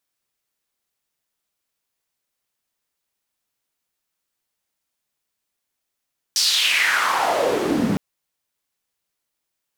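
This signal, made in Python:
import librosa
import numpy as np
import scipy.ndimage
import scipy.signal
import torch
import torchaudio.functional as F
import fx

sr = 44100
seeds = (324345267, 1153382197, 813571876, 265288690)

y = fx.riser_noise(sr, seeds[0], length_s=1.61, colour='white', kind='bandpass', start_hz=5500.0, end_hz=170.0, q=3.9, swell_db=12, law='exponential')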